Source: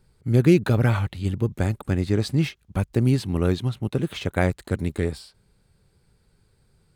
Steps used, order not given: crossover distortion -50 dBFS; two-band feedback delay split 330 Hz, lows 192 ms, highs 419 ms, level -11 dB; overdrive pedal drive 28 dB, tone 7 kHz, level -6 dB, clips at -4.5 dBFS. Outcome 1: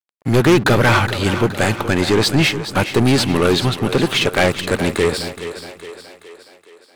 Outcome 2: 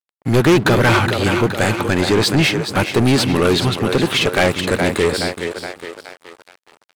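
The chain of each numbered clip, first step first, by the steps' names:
crossover distortion > overdrive pedal > two-band feedback delay; two-band feedback delay > crossover distortion > overdrive pedal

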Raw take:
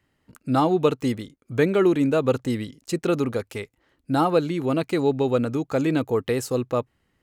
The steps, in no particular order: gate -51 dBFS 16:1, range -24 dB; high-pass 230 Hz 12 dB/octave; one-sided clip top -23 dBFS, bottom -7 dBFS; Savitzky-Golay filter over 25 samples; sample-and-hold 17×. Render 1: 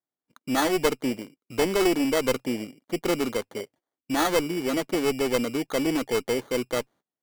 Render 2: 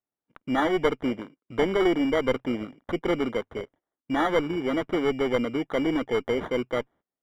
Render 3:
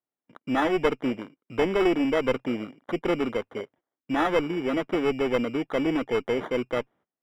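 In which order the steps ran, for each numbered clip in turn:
Savitzky-Golay filter > sample-and-hold > high-pass > one-sided clip > gate; high-pass > sample-and-hold > one-sided clip > Savitzky-Golay filter > gate; gate > sample-and-hold > high-pass > one-sided clip > Savitzky-Golay filter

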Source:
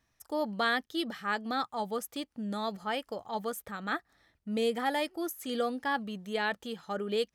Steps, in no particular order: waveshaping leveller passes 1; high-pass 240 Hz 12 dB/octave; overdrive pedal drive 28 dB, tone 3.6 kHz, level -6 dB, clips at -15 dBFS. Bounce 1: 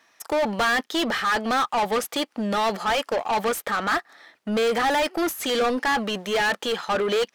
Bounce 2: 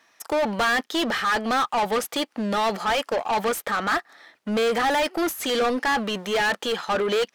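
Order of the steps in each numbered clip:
high-pass > waveshaping leveller > overdrive pedal; waveshaping leveller > high-pass > overdrive pedal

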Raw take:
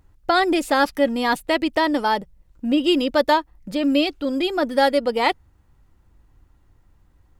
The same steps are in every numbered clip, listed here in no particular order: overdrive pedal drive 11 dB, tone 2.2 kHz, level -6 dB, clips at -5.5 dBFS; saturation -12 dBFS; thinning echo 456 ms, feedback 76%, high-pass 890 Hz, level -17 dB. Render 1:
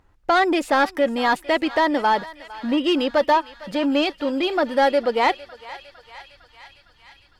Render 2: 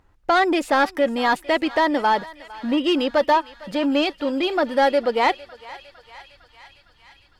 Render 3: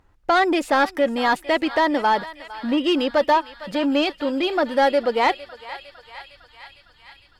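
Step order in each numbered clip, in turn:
saturation > thinning echo > overdrive pedal; saturation > overdrive pedal > thinning echo; thinning echo > saturation > overdrive pedal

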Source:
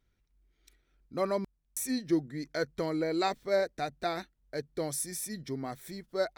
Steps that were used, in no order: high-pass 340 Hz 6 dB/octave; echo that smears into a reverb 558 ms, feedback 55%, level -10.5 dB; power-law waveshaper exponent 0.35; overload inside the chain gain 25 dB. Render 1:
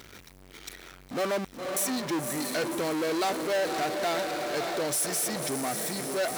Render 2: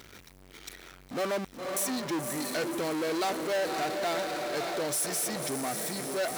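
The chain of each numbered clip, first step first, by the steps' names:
overload inside the chain > echo that smears into a reverb > power-law waveshaper > high-pass; echo that smears into a reverb > overload inside the chain > power-law waveshaper > high-pass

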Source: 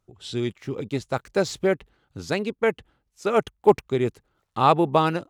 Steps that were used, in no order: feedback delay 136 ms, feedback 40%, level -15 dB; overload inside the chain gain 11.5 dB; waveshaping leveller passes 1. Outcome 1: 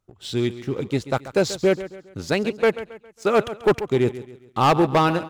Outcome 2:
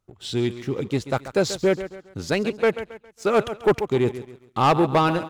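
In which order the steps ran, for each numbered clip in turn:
waveshaping leveller > feedback delay > overload inside the chain; feedback delay > overload inside the chain > waveshaping leveller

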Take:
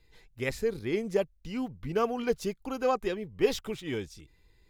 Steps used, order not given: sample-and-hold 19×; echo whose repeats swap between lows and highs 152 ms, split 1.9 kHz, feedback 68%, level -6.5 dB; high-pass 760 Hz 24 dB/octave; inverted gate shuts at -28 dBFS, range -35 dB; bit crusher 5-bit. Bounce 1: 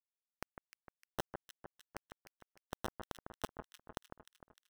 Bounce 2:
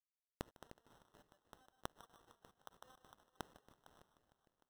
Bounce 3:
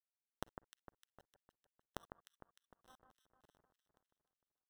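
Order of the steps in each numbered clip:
high-pass > sample-and-hold > inverted gate > bit crusher > echo whose repeats swap between lows and highs; bit crusher > high-pass > inverted gate > echo whose repeats swap between lows and highs > sample-and-hold; high-pass > bit crusher > inverted gate > sample-and-hold > echo whose repeats swap between lows and highs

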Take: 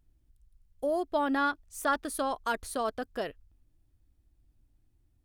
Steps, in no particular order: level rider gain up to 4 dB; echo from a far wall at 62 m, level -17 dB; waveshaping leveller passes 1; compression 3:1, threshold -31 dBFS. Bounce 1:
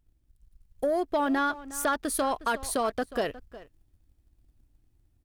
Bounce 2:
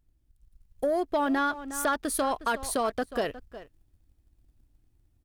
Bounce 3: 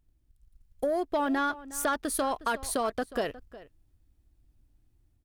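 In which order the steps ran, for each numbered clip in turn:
compression > echo from a far wall > waveshaping leveller > level rider; echo from a far wall > compression > level rider > waveshaping leveller; waveshaping leveller > compression > level rider > echo from a far wall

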